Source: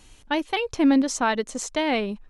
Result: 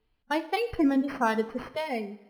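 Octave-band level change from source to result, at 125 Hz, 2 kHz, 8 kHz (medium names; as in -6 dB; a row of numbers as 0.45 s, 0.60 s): no reading, -5.0 dB, under -15 dB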